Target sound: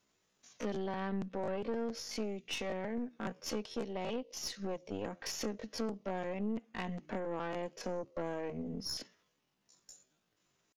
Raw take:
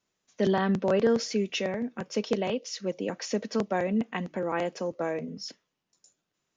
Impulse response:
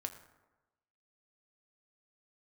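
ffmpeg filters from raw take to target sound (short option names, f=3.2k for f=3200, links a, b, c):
-af "acompressor=threshold=-40dB:ratio=5,aeval=exprs='(tanh(70.8*val(0)+0.65)-tanh(0.65))/70.8':c=same,atempo=0.61,volume=7dB"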